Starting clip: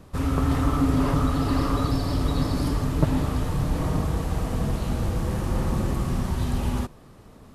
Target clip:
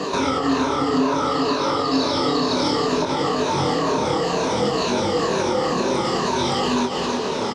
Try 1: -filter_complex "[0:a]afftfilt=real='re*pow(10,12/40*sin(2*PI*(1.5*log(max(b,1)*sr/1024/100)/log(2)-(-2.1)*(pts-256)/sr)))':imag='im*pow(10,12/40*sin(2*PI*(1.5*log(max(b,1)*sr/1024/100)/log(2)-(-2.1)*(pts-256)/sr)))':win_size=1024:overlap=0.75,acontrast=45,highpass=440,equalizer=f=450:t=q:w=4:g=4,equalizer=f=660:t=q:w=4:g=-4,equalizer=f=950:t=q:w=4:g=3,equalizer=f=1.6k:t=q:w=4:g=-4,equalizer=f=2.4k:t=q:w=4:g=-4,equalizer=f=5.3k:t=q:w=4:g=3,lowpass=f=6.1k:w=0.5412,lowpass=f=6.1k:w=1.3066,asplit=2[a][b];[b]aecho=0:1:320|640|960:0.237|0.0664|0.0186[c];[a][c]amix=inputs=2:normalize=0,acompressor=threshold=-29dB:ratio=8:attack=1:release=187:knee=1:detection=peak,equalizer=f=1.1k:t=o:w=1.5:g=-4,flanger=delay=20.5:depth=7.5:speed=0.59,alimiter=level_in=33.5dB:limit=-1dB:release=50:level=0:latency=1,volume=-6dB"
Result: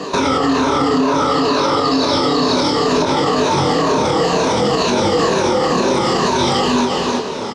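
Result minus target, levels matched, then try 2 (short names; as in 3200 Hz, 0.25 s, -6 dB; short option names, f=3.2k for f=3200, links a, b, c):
compressor: peak gain reduction -9 dB
-filter_complex "[0:a]afftfilt=real='re*pow(10,12/40*sin(2*PI*(1.5*log(max(b,1)*sr/1024/100)/log(2)-(-2.1)*(pts-256)/sr)))':imag='im*pow(10,12/40*sin(2*PI*(1.5*log(max(b,1)*sr/1024/100)/log(2)-(-2.1)*(pts-256)/sr)))':win_size=1024:overlap=0.75,acontrast=45,highpass=440,equalizer=f=450:t=q:w=4:g=4,equalizer=f=660:t=q:w=4:g=-4,equalizer=f=950:t=q:w=4:g=3,equalizer=f=1.6k:t=q:w=4:g=-4,equalizer=f=2.4k:t=q:w=4:g=-4,equalizer=f=5.3k:t=q:w=4:g=3,lowpass=f=6.1k:w=0.5412,lowpass=f=6.1k:w=1.3066,asplit=2[a][b];[b]aecho=0:1:320|640|960:0.237|0.0664|0.0186[c];[a][c]amix=inputs=2:normalize=0,acompressor=threshold=-39.5dB:ratio=8:attack=1:release=187:knee=1:detection=peak,equalizer=f=1.1k:t=o:w=1.5:g=-4,flanger=delay=20.5:depth=7.5:speed=0.59,alimiter=level_in=33.5dB:limit=-1dB:release=50:level=0:latency=1,volume=-6dB"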